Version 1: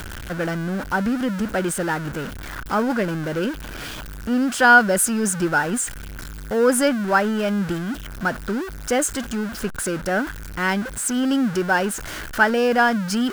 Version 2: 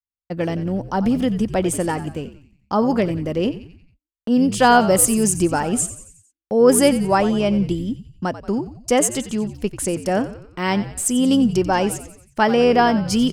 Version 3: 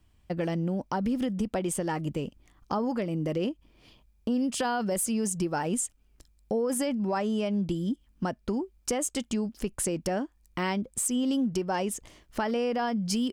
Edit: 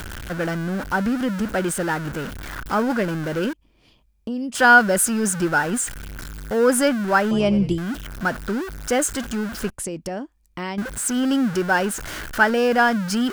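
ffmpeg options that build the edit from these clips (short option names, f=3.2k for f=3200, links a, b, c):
-filter_complex "[2:a]asplit=2[a][b];[0:a]asplit=4[c][d][e][f];[c]atrim=end=3.532[g];[a]atrim=start=3.528:end=4.552[h];[d]atrim=start=4.548:end=7.312[i];[1:a]atrim=start=7.308:end=7.782[j];[e]atrim=start=7.778:end=9.702[k];[b]atrim=start=9.698:end=10.782[l];[f]atrim=start=10.778[m];[g][h]acrossfade=d=0.004:c1=hsin:c2=hsin[n];[n][i]acrossfade=d=0.004:c1=hsin:c2=hsin[o];[o][j]acrossfade=d=0.004:c1=hsin:c2=hsin[p];[p][k]acrossfade=d=0.004:c1=hsin:c2=hsin[q];[q][l]acrossfade=d=0.004:c1=hsin:c2=hsin[r];[r][m]acrossfade=d=0.004:c1=hsin:c2=hsin"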